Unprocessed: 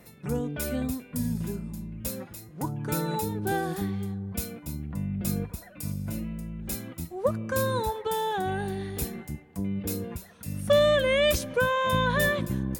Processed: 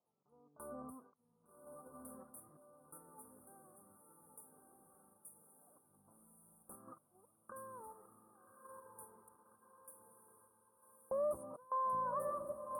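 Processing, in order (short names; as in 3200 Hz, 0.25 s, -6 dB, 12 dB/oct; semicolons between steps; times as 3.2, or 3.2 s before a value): recorder AGC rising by 46 dB/s; auto swell 0.176 s; passive tone stack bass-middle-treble 10-0-1; LFO high-pass saw up 0.18 Hz 840–5300 Hz; gate with hold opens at -45 dBFS; Chebyshev band-stop 1200–9400 Hz, order 5; air absorption 120 m; diffused feedback echo 1.163 s, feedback 45%, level -5.5 dB; in parallel at -1 dB: level quantiser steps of 13 dB; on the sum: gain +17.5 dB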